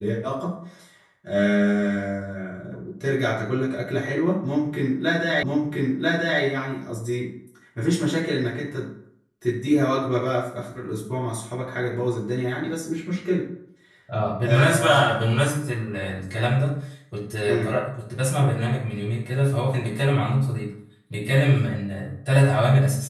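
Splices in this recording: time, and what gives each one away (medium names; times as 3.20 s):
5.43 s: repeat of the last 0.99 s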